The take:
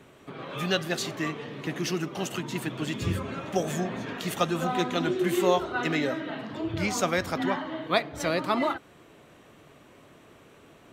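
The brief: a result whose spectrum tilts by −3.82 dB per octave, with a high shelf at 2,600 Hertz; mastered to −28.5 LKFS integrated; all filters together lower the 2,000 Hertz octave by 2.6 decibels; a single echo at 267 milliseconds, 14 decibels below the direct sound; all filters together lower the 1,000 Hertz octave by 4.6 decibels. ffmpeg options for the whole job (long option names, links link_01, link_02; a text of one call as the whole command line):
ffmpeg -i in.wav -af "equalizer=frequency=1000:width_type=o:gain=-6.5,equalizer=frequency=2000:width_type=o:gain=-4.5,highshelf=frequency=2600:gain=7,aecho=1:1:267:0.2,volume=0.5dB" out.wav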